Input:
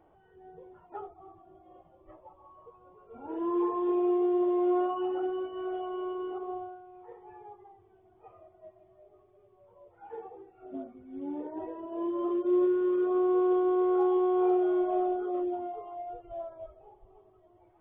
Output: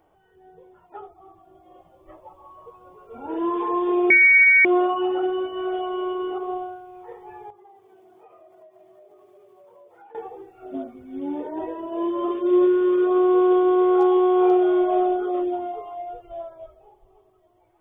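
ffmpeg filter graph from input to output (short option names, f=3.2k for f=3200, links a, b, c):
-filter_complex "[0:a]asettb=1/sr,asplit=3[a][b][c];[a]atrim=end=4.104[d];[b]atrim=start=4.1:end=4.65,asetpts=PTS-STARTPTS,afade=t=in:d=0.004:c=qsin,afade=t=out:st=0.546:d=0.004:c=qsin,lowpass=f=2.2k:t=q:w=0.5098,lowpass=f=2.2k:t=q:w=0.6013,lowpass=f=2.2k:t=q:w=0.9,lowpass=f=2.2k:t=q:w=2.563,afreqshift=-2600,acompressor=mode=upward:threshold=-38dB:ratio=2.5:attack=3.2:release=140:knee=2.83:detection=peak[e];[c]atrim=start=4.646[f];[d][e]acrossfade=d=0.004:c1=hsin:c2=qsin[g];[g][f]acrossfade=d=0.004:c1=qsin:c2=hsin,asettb=1/sr,asplit=3[h][i][j];[h]atrim=end=7.504[k];[i]atrim=start=7.5:end=10.15,asetpts=PTS-STARTPTS,afade=t=in:d=0.004:c=qsin,afade=t=out:st=2.646:d=0.004:c=qsin,lowshelf=f=440:g=8.5,acompressor=threshold=-54dB:ratio=12:attack=3.2:release=140:knee=1:detection=peak,highpass=310[l];[j]atrim=start=10.146[m];[k][l]acrossfade=d=0.004:c1=hsin:c2=qsin[n];[n][m]acrossfade=d=0.004:c1=qsin:c2=hsin,highshelf=f=2.6k:g=10.5,bandreject=f=50:t=h:w=6,bandreject=f=100:t=h:w=6,bandreject=f=150:t=h:w=6,bandreject=f=200:t=h:w=6,bandreject=f=250:t=h:w=6,bandreject=f=300:t=h:w=6,bandreject=f=350:t=h:w=6,dynaudnorm=f=220:g=17:m=8dB"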